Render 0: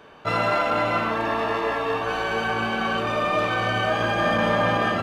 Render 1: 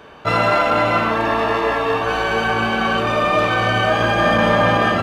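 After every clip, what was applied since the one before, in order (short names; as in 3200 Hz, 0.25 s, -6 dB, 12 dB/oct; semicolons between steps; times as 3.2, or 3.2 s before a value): bell 65 Hz +5.5 dB 0.75 oct; gain +6 dB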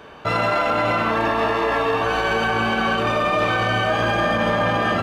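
limiter -11.5 dBFS, peak gain reduction 7 dB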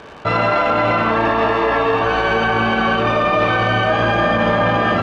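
crackle 170/s -31 dBFS; air absorption 130 m; gain +4.5 dB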